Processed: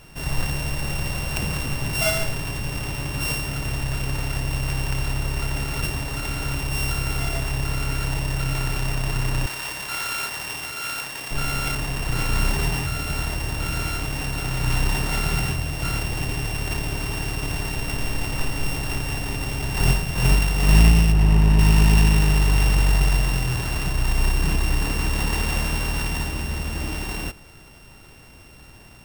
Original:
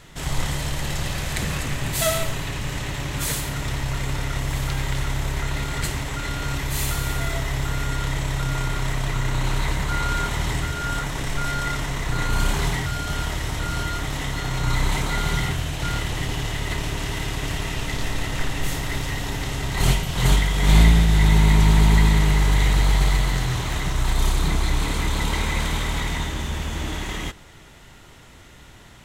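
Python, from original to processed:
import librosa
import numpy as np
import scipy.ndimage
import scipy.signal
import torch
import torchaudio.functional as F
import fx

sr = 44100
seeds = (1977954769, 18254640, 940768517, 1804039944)

y = np.r_[np.sort(x[:len(x) // 16 * 16].reshape(-1, 16), axis=1).ravel(), x[len(x) // 16 * 16:]]
y = fx.highpass(y, sr, hz=970.0, slope=6, at=(9.46, 11.31))
y = fx.high_shelf(y, sr, hz=2100.0, db=-10.5, at=(21.11, 21.58), fade=0.02)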